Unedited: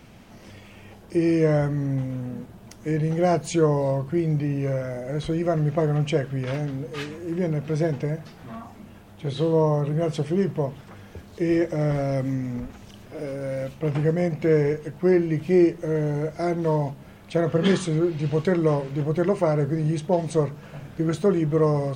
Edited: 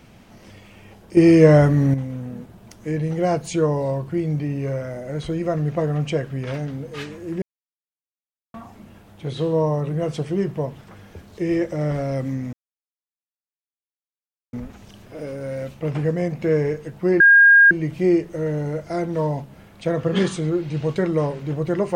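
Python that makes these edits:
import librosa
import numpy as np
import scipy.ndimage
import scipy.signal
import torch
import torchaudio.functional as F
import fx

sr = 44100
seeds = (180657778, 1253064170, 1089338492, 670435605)

y = fx.edit(x, sr, fx.clip_gain(start_s=1.17, length_s=0.77, db=8.5),
    fx.silence(start_s=7.42, length_s=1.12),
    fx.insert_silence(at_s=12.53, length_s=2.0),
    fx.insert_tone(at_s=15.2, length_s=0.51, hz=1620.0, db=-7.5), tone=tone)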